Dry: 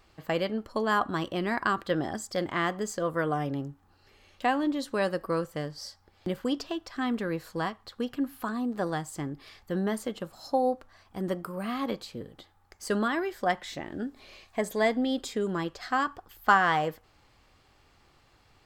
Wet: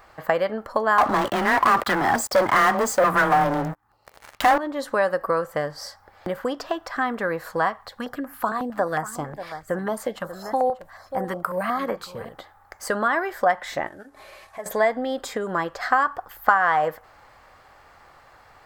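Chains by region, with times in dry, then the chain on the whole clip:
0:00.98–0:04.58: auto-filter notch square 1.7 Hz 520–1,600 Hz + frequency shifter +18 Hz + leveller curve on the samples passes 5
0:07.79–0:12.29: single-tap delay 588 ms −15.5 dB + notch on a step sequencer 11 Hz 300–3,800 Hz
0:13.87–0:14.66: variable-slope delta modulation 64 kbit/s + downward compressor 2.5 to 1, threshold −50 dBFS + notch comb filter 240 Hz
whole clip: high-shelf EQ 11,000 Hz +9.5 dB; downward compressor 4 to 1, threshold −31 dBFS; flat-topped bell 1,000 Hz +12 dB 2.3 octaves; level +3 dB

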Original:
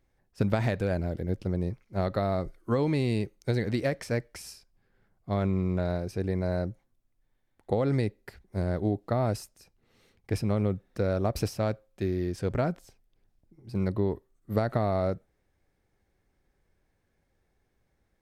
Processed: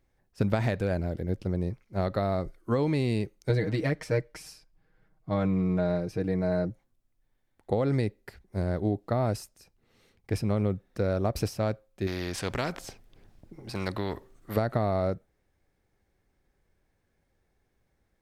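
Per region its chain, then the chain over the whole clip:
0:03.49–0:06.70: high-shelf EQ 4,300 Hz −6.5 dB + comb filter 6.4 ms, depth 74%
0:12.07–0:14.57: high-shelf EQ 7,100 Hz −8 dB + every bin compressed towards the loudest bin 2 to 1
whole clip: no processing

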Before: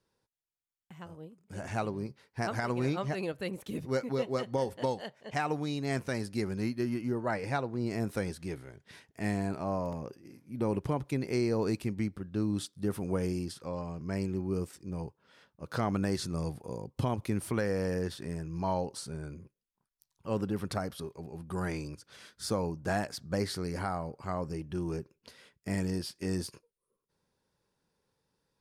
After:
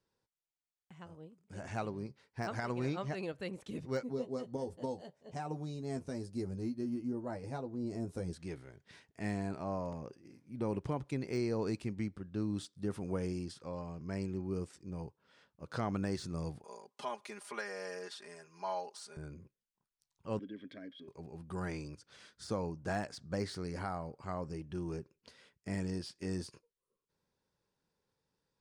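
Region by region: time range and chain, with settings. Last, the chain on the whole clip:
0:04.03–0:08.33: parametric band 2,100 Hz −14.5 dB 2.4 octaves + double-tracking delay 12 ms −5.5 dB
0:16.64–0:19.17: high-pass filter 690 Hz + comb filter 4.9 ms, depth 98%
0:20.39–0:21.08: formant filter i + hollow resonant body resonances 630/970/1,600/3,300 Hz, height 18 dB, ringing for 20 ms
whole clip: low-pass filter 9,100 Hz 24 dB per octave; de-essing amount 95%; level −5 dB

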